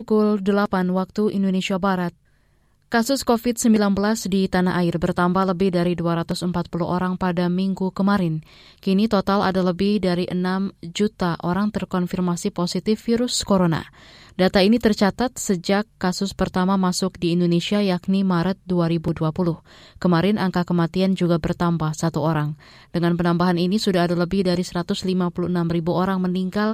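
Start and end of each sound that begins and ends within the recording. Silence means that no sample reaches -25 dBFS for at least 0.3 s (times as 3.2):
2.92–8.38
8.83–13.82
14.39–19.53
20.02–22.52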